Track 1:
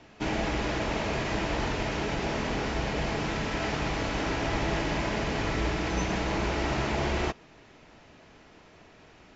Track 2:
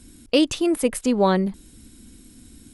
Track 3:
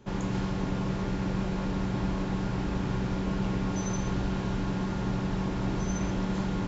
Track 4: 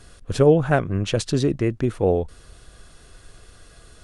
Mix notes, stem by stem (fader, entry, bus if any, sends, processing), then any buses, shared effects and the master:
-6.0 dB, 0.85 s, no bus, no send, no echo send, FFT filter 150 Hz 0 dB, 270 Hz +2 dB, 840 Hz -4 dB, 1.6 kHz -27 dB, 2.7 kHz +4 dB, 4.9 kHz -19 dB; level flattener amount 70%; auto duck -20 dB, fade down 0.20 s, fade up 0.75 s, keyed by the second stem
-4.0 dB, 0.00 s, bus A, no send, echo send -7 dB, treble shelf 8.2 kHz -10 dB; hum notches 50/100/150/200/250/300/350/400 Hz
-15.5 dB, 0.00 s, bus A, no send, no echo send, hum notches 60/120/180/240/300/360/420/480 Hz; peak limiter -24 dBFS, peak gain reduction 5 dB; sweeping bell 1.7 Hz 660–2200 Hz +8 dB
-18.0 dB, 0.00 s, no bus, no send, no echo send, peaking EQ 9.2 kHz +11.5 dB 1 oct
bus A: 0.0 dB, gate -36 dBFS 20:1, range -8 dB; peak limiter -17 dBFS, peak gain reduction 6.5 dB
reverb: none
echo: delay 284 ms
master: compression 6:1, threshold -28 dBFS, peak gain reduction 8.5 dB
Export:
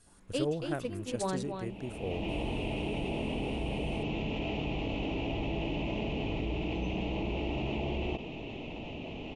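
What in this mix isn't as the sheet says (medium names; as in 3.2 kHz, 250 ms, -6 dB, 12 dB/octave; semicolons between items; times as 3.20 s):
stem 2 -4.0 dB -> -15.0 dB; stem 3 -15.5 dB -> -24.0 dB; master: missing compression 6:1, threshold -28 dBFS, peak gain reduction 8.5 dB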